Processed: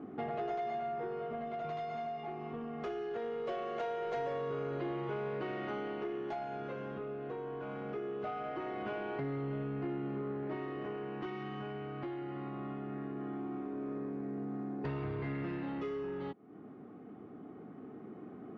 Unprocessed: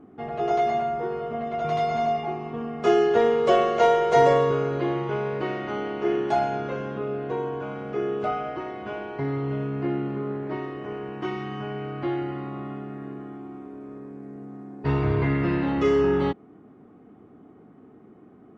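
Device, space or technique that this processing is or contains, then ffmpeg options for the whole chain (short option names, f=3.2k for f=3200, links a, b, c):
AM radio: -af "highpass=110,lowpass=4.4k,acompressor=threshold=-38dB:ratio=5,asoftclip=type=tanh:threshold=-32.5dB,tremolo=f=0.21:d=0.34,bandreject=f=960:w=20,volume=3.5dB"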